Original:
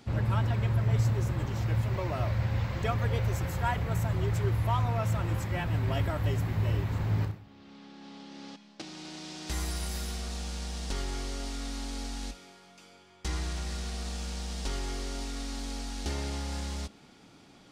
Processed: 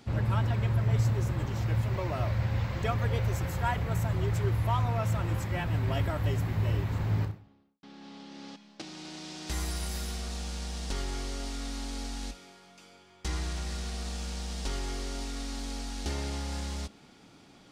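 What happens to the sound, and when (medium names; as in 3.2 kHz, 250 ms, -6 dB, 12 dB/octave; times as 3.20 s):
7.15–7.83 s: studio fade out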